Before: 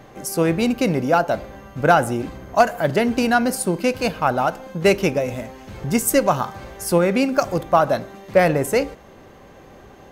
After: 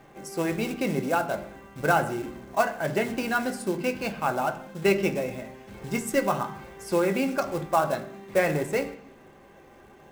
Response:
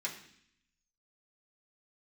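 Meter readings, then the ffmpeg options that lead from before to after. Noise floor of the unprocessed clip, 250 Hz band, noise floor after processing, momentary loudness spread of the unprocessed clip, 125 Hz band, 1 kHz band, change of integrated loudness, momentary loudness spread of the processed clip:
-45 dBFS, -8.0 dB, -52 dBFS, 10 LU, -8.5 dB, -7.5 dB, -7.5 dB, 10 LU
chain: -filter_complex "[0:a]aemphasis=mode=reproduction:type=50fm,acrusher=bits=5:mode=log:mix=0:aa=0.000001,asplit=2[s0][s1];[1:a]atrim=start_sample=2205[s2];[s1][s2]afir=irnorm=-1:irlink=0,volume=0.668[s3];[s0][s3]amix=inputs=2:normalize=0,volume=0.376"

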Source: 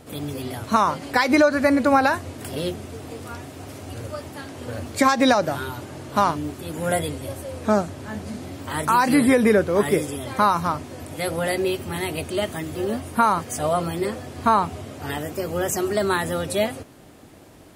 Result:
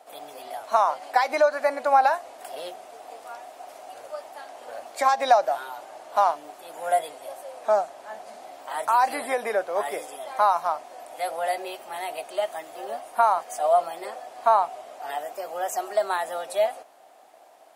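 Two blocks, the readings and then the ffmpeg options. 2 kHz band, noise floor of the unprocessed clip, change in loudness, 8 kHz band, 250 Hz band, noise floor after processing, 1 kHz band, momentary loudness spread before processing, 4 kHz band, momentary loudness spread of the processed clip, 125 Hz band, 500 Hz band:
-6.5 dB, -46 dBFS, -2.5 dB, -8.0 dB, -22.5 dB, -51 dBFS, 0.0 dB, 17 LU, -7.5 dB, 20 LU, under -30 dB, -2.5 dB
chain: -af "highpass=f=710:t=q:w=4.9,volume=0.398"

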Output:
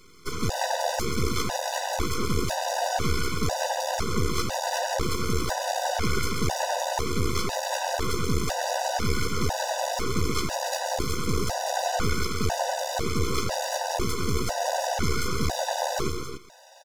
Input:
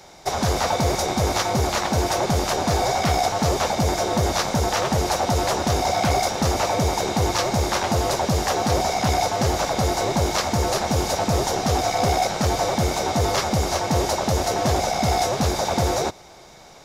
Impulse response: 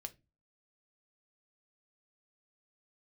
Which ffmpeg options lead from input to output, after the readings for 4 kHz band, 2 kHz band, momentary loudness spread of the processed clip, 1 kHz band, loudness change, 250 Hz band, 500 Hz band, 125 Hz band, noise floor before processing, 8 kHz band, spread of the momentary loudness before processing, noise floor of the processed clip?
-5.0 dB, -3.5 dB, 2 LU, -6.5 dB, -6.0 dB, -6.5 dB, -6.5 dB, -7.0 dB, -46 dBFS, -5.0 dB, 1 LU, -33 dBFS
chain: -af "aecho=1:1:134.1|274.1:0.501|0.447,aeval=exprs='max(val(0),0)':c=same,afftfilt=real='re*gt(sin(2*PI*1*pts/sr)*(1-2*mod(floor(b*sr/1024/500),2)),0)':imag='im*gt(sin(2*PI*1*pts/sr)*(1-2*mod(floor(b*sr/1024/500),2)),0)':win_size=1024:overlap=0.75"

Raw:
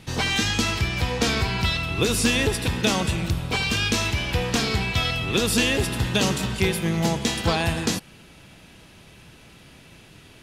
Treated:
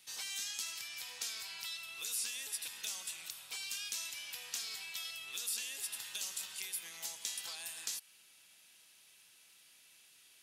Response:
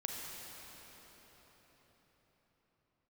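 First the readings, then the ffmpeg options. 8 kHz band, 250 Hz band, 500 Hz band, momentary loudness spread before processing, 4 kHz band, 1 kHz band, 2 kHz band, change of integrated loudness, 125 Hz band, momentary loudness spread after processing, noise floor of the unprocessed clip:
-9.0 dB, under -40 dB, -37.0 dB, 4 LU, -15.5 dB, -28.0 dB, -20.5 dB, -17.0 dB, under -40 dB, 5 LU, -49 dBFS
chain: -filter_complex "[0:a]acrossover=split=570|6000[s0][s1][s2];[s0]acompressor=threshold=0.0158:ratio=4[s3];[s1]acompressor=threshold=0.0282:ratio=4[s4];[s2]acompressor=threshold=0.0178:ratio=4[s5];[s3][s4][s5]amix=inputs=3:normalize=0,aderivative,volume=0.562"

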